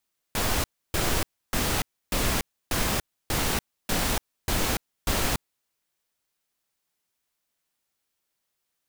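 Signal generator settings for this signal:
noise bursts pink, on 0.29 s, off 0.30 s, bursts 9, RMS −25 dBFS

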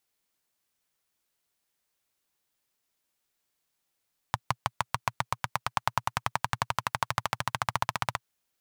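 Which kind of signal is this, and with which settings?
pulse-train model of a single-cylinder engine, changing speed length 3.87 s, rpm 700, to 1,900, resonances 120/970 Hz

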